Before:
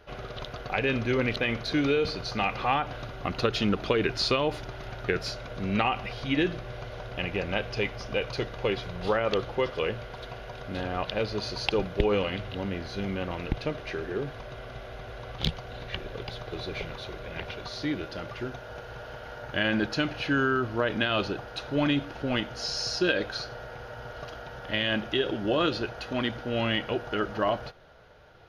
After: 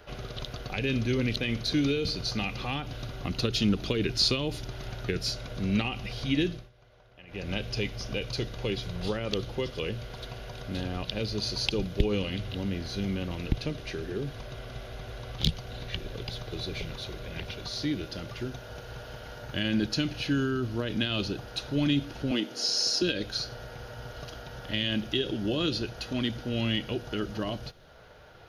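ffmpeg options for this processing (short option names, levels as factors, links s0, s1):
-filter_complex "[0:a]asettb=1/sr,asplit=3[s0][s1][s2];[s0]atrim=end=22.314[s3];[s1]atrim=start=22.31:end=23.02,asetpts=PTS-STARTPTS,afade=t=in:d=0.004:c=qsin,afade=t=out:st=0.706:d=0.004:c=qsin,highpass=f=300:t=q:w=1.8[s4];[s2]atrim=start=23.016[s5];[s3][s4]acrossfade=d=0.004:c1=hsin:c2=qsin[s6];[s6][s5]acrossfade=d=0.004:c1=qsin:c2=hsin,asplit=3[s7][s8][s9];[s7]atrim=end=6.7,asetpts=PTS-STARTPTS,afade=t=out:st=6.44:d=0.26:silence=0.0749894[s10];[s8]atrim=start=6.7:end=7.27,asetpts=PTS-STARTPTS,volume=0.075[s11];[s9]atrim=start=7.27,asetpts=PTS-STARTPTS,afade=t=in:d=0.26:silence=0.0749894[s12];[s10][s11][s12]concat=n=3:v=0:a=1,highshelf=f=4800:g=5.5,acrossover=split=350|3000[s13][s14][s15];[s14]acompressor=threshold=0.00224:ratio=2[s16];[s13][s16][s15]amix=inputs=3:normalize=0,volume=1.33"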